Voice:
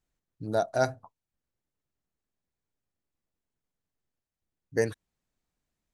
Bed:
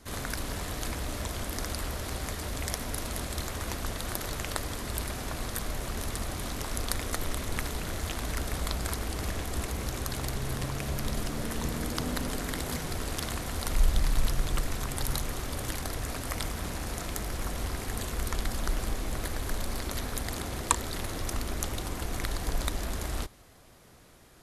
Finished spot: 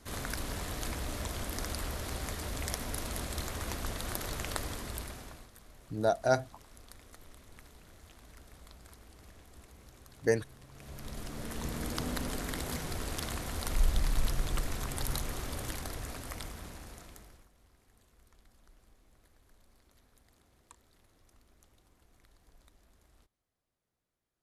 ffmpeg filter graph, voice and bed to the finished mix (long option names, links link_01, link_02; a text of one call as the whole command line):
ffmpeg -i stem1.wav -i stem2.wav -filter_complex "[0:a]adelay=5500,volume=-1dB[link_01];[1:a]volume=15.5dB,afade=type=out:start_time=4.64:duration=0.85:silence=0.112202,afade=type=in:start_time=10.68:duration=1.24:silence=0.11885,afade=type=out:start_time=15.46:duration=2.02:silence=0.0375837[link_02];[link_01][link_02]amix=inputs=2:normalize=0" out.wav